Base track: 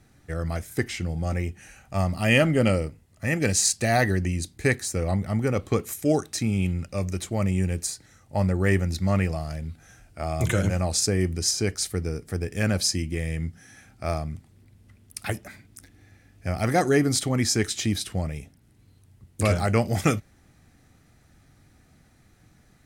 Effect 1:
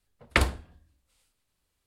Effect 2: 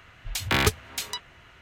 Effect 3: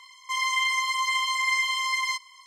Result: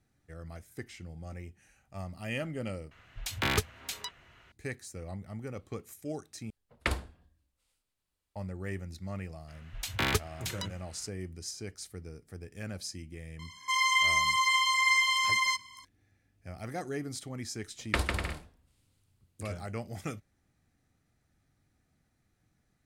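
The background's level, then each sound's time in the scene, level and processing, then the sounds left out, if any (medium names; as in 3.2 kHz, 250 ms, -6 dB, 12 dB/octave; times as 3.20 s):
base track -16 dB
2.91 s: replace with 2 -6.5 dB
6.50 s: replace with 1 -8 dB
9.48 s: add 2 -6.5 dB
13.39 s: add 3 -0.5 dB
17.58 s: add 1 -6.5 dB + bouncing-ball echo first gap 150 ms, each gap 0.65×, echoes 5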